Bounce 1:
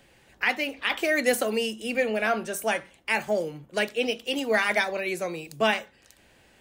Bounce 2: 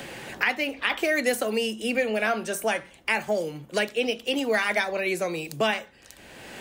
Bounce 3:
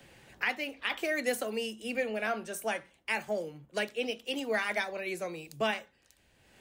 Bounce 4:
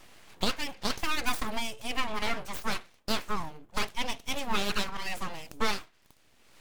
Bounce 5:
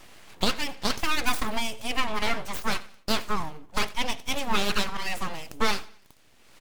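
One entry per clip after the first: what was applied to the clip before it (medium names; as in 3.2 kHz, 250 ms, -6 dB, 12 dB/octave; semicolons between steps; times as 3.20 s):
three bands compressed up and down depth 70%
three bands expanded up and down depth 70%; trim -7.5 dB
full-wave rectifier; trim +4.5 dB
feedback delay 88 ms, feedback 41%, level -20.5 dB; trim +4 dB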